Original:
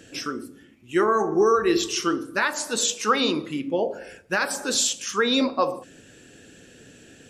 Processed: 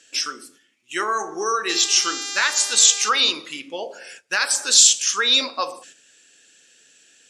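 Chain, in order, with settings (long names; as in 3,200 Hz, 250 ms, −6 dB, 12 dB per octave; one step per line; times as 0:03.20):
0:01.68–0:03.08: hum with harmonics 400 Hz, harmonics 19, −37 dBFS −2 dB per octave
noise gate −45 dBFS, range −9 dB
meter weighting curve ITU-R 468
level −1 dB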